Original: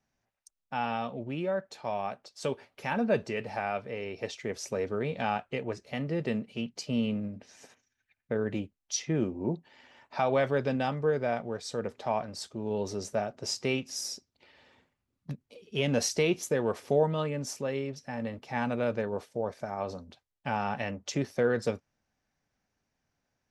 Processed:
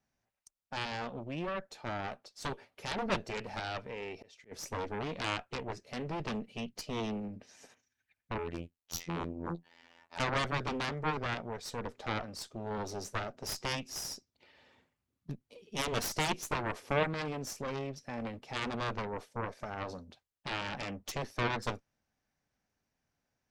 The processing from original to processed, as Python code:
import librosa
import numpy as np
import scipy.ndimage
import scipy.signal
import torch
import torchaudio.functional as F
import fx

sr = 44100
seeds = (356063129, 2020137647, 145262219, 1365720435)

y = fx.auto_swell(x, sr, attack_ms=470.0, at=(3.91, 4.51), fade=0.02)
y = fx.robotise(y, sr, hz=84.6, at=(8.38, 10.2))
y = fx.cheby_harmonics(y, sr, harmonics=(7, 8), levels_db=(-8, -13), full_scale_db=-13.0)
y = y * 10.0 ** (-8.0 / 20.0)